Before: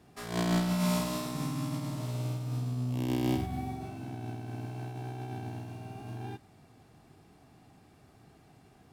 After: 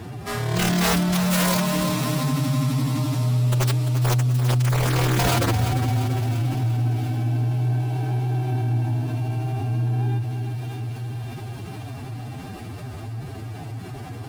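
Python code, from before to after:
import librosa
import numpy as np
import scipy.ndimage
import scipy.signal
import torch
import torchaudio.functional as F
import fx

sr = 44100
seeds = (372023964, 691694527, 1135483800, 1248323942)

p1 = fx.peak_eq(x, sr, hz=110.0, db=12.0, octaves=0.37)
p2 = fx.sample_hold(p1, sr, seeds[0], rate_hz=11000.0, jitter_pct=0)
p3 = p1 + F.gain(torch.from_numpy(p2), -10.0).numpy()
p4 = fx.echo_wet_highpass(p3, sr, ms=364, feedback_pct=70, hz=2400.0, wet_db=-7)
p5 = (np.mod(10.0 ** (19.5 / 20.0) * p4 + 1.0, 2.0) - 1.0) / 10.0 ** (19.5 / 20.0)
p6 = fx.low_shelf(p5, sr, hz=160.0, db=4.0)
p7 = fx.hum_notches(p6, sr, base_hz=50, count=6)
p8 = p7 + fx.echo_feedback(p7, sr, ms=215, feedback_pct=57, wet_db=-11.0, dry=0)
p9 = fx.stretch_vocoder(p8, sr, factor=1.6)
p10 = fx.env_flatten(p9, sr, amount_pct=50)
y = F.gain(torch.from_numpy(p10), 3.0).numpy()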